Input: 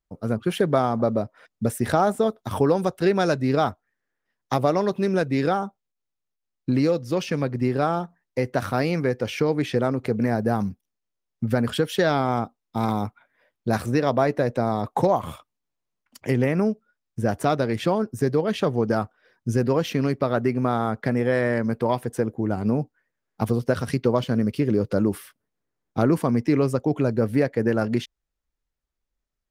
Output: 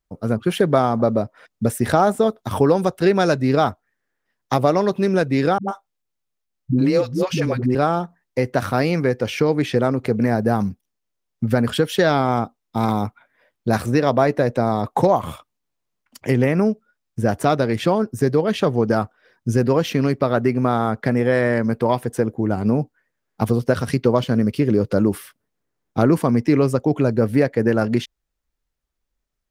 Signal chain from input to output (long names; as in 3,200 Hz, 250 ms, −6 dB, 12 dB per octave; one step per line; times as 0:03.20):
0:05.58–0:07.75: all-pass dispersion highs, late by 103 ms, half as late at 340 Hz
level +4 dB